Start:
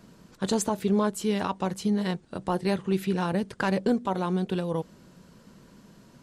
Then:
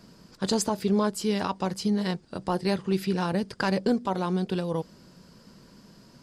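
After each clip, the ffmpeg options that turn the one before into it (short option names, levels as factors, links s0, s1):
-af "equalizer=f=4900:t=o:w=0.25:g=12"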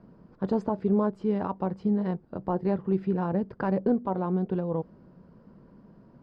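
-af "lowpass=1000"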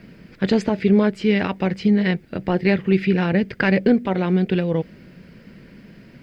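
-af "highshelf=f=1500:t=q:w=3:g=13,volume=2.82"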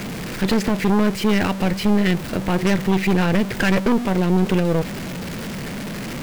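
-af "aeval=exprs='val(0)+0.5*0.0562*sgn(val(0))':c=same,aeval=exprs='0.562*(cos(1*acos(clip(val(0)/0.562,-1,1)))-cos(1*PI/2))+0.0891*(cos(5*acos(clip(val(0)/0.562,-1,1)))-cos(5*PI/2))+0.112*(cos(6*acos(clip(val(0)/0.562,-1,1)))-cos(6*PI/2))':c=same,volume=0.596"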